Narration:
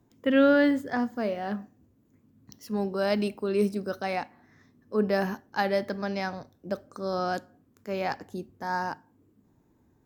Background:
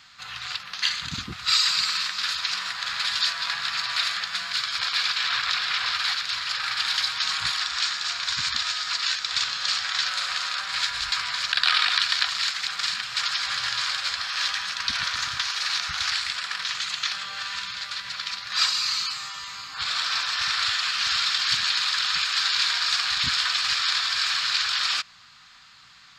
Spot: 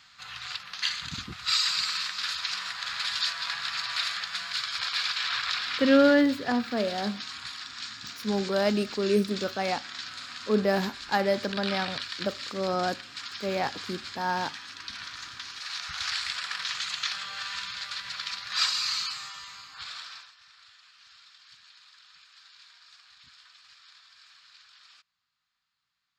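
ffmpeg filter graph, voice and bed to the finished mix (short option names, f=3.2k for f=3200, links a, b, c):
-filter_complex "[0:a]adelay=5550,volume=1dB[a];[1:a]volume=5dB,afade=t=out:st=5.54:d=0.65:silence=0.375837,afade=t=in:st=15.55:d=0.75:silence=0.334965,afade=t=out:st=18.97:d=1.37:silence=0.0421697[b];[a][b]amix=inputs=2:normalize=0"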